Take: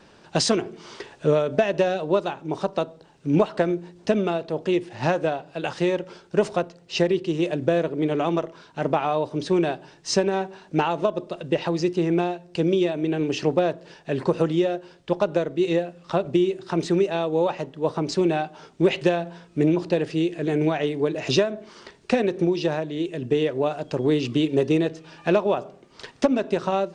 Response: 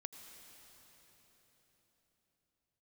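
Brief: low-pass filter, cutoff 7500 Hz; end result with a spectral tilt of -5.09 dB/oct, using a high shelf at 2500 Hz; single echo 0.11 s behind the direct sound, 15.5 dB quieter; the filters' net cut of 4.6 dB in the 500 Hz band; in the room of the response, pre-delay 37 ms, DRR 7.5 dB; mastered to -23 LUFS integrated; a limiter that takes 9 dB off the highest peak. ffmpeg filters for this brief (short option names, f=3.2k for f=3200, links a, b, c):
-filter_complex "[0:a]lowpass=7.5k,equalizer=f=500:t=o:g=-6.5,highshelf=f=2.5k:g=6.5,alimiter=limit=-16dB:level=0:latency=1,aecho=1:1:110:0.168,asplit=2[a][b];[1:a]atrim=start_sample=2205,adelay=37[c];[b][c]afir=irnorm=-1:irlink=0,volume=-3.5dB[d];[a][d]amix=inputs=2:normalize=0,volume=4.5dB"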